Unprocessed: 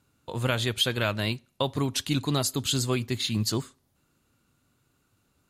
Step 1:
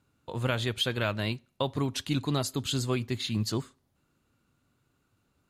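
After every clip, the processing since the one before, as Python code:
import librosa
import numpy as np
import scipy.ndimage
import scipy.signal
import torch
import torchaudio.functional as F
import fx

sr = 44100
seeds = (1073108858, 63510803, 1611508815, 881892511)

y = fx.high_shelf(x, sr, hz=4700.0, db=-7.0)
y = y * 10.0 ** (-2.0 / 20.0)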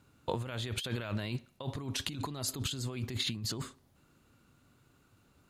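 y = fx.over_compress(x, sr, threshold_db=-37.0, ratio=-1.0)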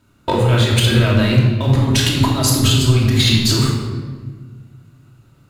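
y = fx.leveller(x, sr, passes=2)
y = fx.doubler(y, sr, ms=31.0, db=-11.5)
y = fx.room_shoebox(y, sr, seeds[0], volume_m3=1500.0, walls='mixed', distance_m=2.8)
y = y * 10.0 ** (8.0 / 20.0)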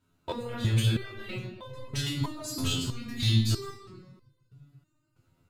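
y = fx.rev_double_slope(x, sr, seeds[1], early_s=0.72, late_s=3.1, knee_db=-25, drr_db=12.0)
y = fx.dereverb_blind(y, sr, rt60_s=0.5)
y = fx.resonator_held(y, sr, hz=3.1, low_hz=86.0, high_hz=510.0)
y = y * 10.0 ** (-4.5 / 20.0)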